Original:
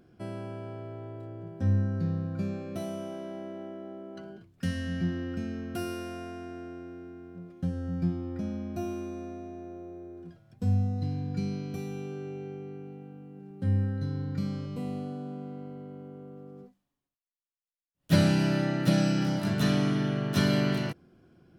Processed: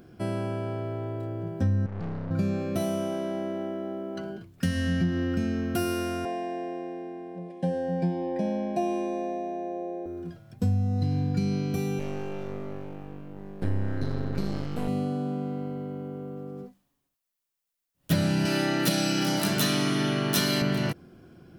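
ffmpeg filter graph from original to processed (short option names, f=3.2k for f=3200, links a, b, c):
-filter_complex "[0:a]asettb=1/sr,asplit=3[a][b][c];[a]atrim=end=1.864[d];[b]atrim=start=1.86:end=2.31,asetpts=PTS-STARTPTS,afade=t=in:d=0.004:c=qsin,afade=t=out:st=0.446:d=0.004:c=qsin,lowpass=4.8k,aeval=exprs='(tanh(100*val(0)+0.7)-tanh(0.7))/100':c=same[e];[c]atrim=start=2.306[f];[d][e]acrossfade=d=0.004:c1=hsin:c2=qsin[g];[g][f]acrossfade=d=0.004:c1=qsin:c2=hsin,asettb=1/sr,asplit=3[h][i][j];[h]atrim=end=6.254[k];[i]atrim=start=6.25:end=10.06,asetpts=PTS-STARTPTS,afade=t=in:d=0.004:c=qsin,afade=t=out:st=3.806:d=0.004:c=qsin,asuperstop=centerf=1300:order=8:qfactor=2.8,highpass=f=180:w=0.5412,highpass=f=180:w=1.3066,equalizer=f=280:t=q:w=4:g=-8,equalizer=f=530:t=q:w=4:g=8,equalizer=f=790:t=q:w=4:g=9,equalizer=f=1.3k:t=q:w=4:g=7,equalizer=f=4.5k:t=q:w=4:g=-3,equalizer=f=6.5k:t=q:w=4:g=-8,lowpass=f=9.1k:w=0.5412,lowpass=f=9.1k:w=1.3066[l];[j]atrim=start=10.056[m];[k][l]acrossfade=d=0.004:c1=hsin:c2=qsin[n];[n][m]acrossfade=d=0.004:c1=qsin:c2=hsin,asettb=1/sr,asplit=3[o][p][q];[o]atrim=end=11.994[r];[p]atrim=start=11.99:end=14.88,asetpts=PTS-STARTPTS,afade=t=in:d=0.004:c=qsin,afade=t=out:st=2.886:d=0.004:c=qsin,aeval=exprs='max(val(0),0)':c=same,equalizer=f=1.8k:t=o:w=1.6:g=2.5[s];[q]atrim=start=14.876[t];[r][s]acrossfade=d=0.004:c1=hsin:c2=qsin[u];[u][t]acrossfade=d=0.004:c1=qsin:c2=hsin,asettb=1/sr,asplit=3[v][w][x];[v]atrim=end=18.454[y];[w]atrim=start=18.45:end=20.62,asetpts=PTS-STARTPTS,afade=t=in:d=0.004:c=qsin,afade=t=out:st=2.166:d=0.004:c=qsin,highpass=190,highshelf=f=3.2k:g=9.5,asplit=2[z][aa];[aa]adelay=33,volume=-11dB[ab];[z][ab]amix=inputs=2:normalize=0,atrim=end_sample=95697[ac];[x]atrim=start=20.616[ad];[y][ac]acrossfade=d=0.004:c1=hsin:c2=qsin[ae];[ae][ad]acrossfade=d=0.004:c1=qsin:c2=hsin,highshelf=f=11k:g=7,acompressor=threshold=-30dB:ratio=5,volume=8dB"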